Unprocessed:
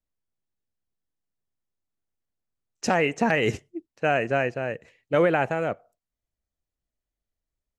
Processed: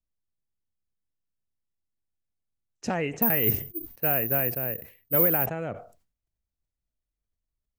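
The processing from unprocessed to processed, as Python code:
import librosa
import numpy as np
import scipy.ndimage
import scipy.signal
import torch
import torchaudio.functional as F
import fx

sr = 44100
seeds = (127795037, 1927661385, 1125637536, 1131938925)

y = fx.low_shelf(x, sr, hz=240.0, db=10.0)
y = fx.resample_bad(y, sr, factor=3, down='filtered', up='zero_stuff', at=(3.22, 5.46))
y = fx.sustainer(y, sr, db_per_s=120.0)
y = y * librosa.db_to_amplitude(-8.5)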